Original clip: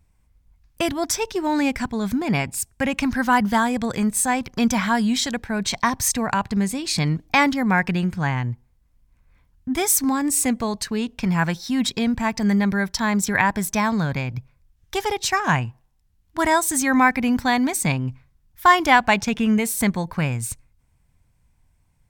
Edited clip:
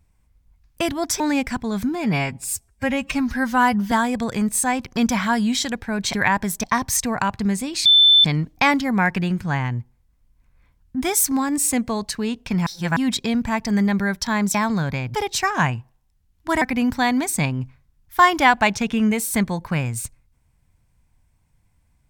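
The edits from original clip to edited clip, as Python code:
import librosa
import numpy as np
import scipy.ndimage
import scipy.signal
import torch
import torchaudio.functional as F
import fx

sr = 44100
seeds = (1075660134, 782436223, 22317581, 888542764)

y = fx.edit(x, sr, fx.cut(start_s=1.2, length_s=0.29),
    fx.stretch_span(start_s=2.18, length_s=1.35, factor=1.5),
    fx.insert_tone(at_s=6.97, length_s=0.39, hz=3530.0, db=-9.0),
    fx.reverse_span(start_s=11.39, length_s=0.3),
    fx.move(start_s=13.27, length_s=0.5, to_s=5.75),
    fx.cut(start_s=14.37, length_s=0.67),
    fx.cut(start_s=16.51, length_s=0.57), tone=tone)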